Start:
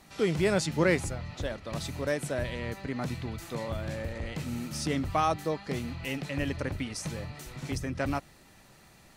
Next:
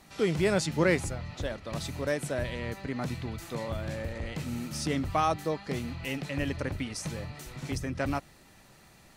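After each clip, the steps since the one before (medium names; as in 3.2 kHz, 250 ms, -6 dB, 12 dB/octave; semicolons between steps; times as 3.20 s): no audible change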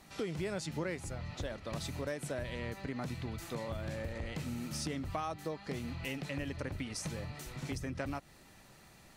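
compression 5:1, threshold -33 dBFS, peak gain reduction 12.5 dB; trim -2 dB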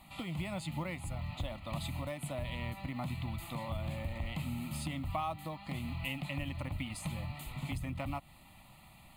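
in parallel at -10 dB: short-mantissa float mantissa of 2-bit; on the sum: static phaser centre 1.6 kHz, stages 6; trim +1.5 dB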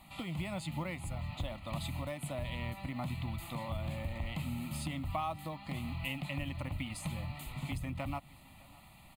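delay 611 ms -23.5 dB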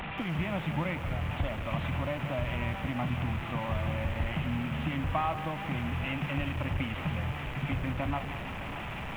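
one-bit delta coder 16 kbps, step -37.5 dBFS; bit-crushed delay 180 ms, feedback 35%, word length 9-bit, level -11 dB; trim +6 dB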